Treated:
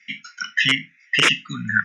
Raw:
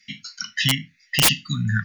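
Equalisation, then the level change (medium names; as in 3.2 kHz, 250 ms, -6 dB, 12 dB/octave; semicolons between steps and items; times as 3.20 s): cabinet simulation 300–6100 Hz, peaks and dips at 410 Hz +9 dB, 810 Hz +4 dB, 1.4 kHz +5 dB, 2.3 kHz +3 dB, 5.1 kHz +4 dB; static phaser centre 1.9 kHz, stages 4; +5.5 dB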